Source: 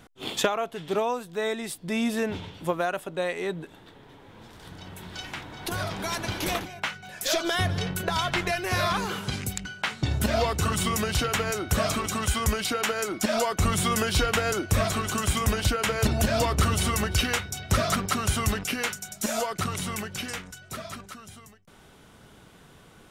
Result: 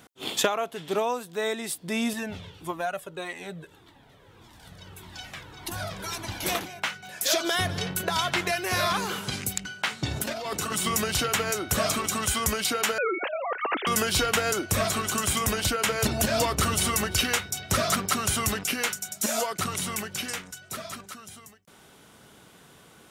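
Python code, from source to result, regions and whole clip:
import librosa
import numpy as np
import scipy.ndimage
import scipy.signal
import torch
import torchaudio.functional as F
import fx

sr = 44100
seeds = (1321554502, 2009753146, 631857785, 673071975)

y = fx.chain(x, sr, fx.low_shelf(hz=85.0, db=12.0),
    fx.comb_cascade(direction='falling', hz=1.7), at=(2.13, 6.45))
y = fx.chain(y, sr, fx.highpass(hz=150.0, slope=12),
    fx.over_compress(threshold_db=-31.0, ratio=-1.0), at=(10.16, 10.86))
y = fx.chain(y, sr, fx.sine_speech(),
    fx.highpass(hz=220.0, slope=24),
    fx.over_compress(threshold_db=-28.0, ratio=-1.0), at=(12.98, 13.87))
y = fx.highpass(y, sr, hz=150.0, slope=6)
y = fx.high_shelf(y, sr, hz=5500.0, db=6.0)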